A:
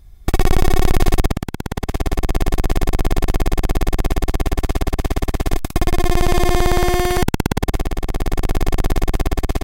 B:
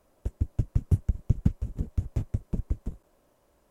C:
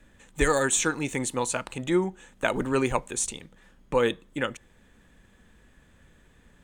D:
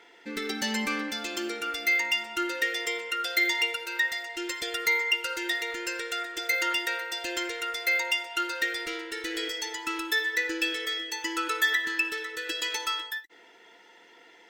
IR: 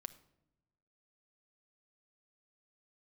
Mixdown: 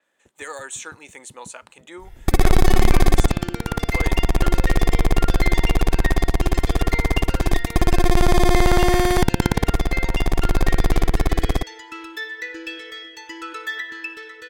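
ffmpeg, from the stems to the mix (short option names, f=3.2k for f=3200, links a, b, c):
-filter_complex "[0:a]equalizer=f=10k:t=o:w=0.22:g=3.5,bandreject=f=2.8k:w=9.6,adelay=2000,volume=-2dB,asplit=2[a][b];[b]volume=-9.5dB[c];[1:a]highpass=230,volume=-14dB[d];[2:a]highpass=560,volume=-8dB[e];[3:a]lowpass=f=3.4k:p=1,equalizer=f=93:w=1.5:g=5,adelay=2050,volume=-2.5dB[f];[4:a]atrim=start_sample=2205[g];[c][g]afir=irnorm=-1:irlink=0[h];[a][d][e][f][h]amix=inputs=5:normalize=0,adynamicequalizer=threshold=0.00891:dfrequency=7300:dqfactor=0.7:tfrequency=7300:tqfactor=0.7:attack=5:release=100:ratio=0.375:range=2:mode=cutabove:tftype=highshelf"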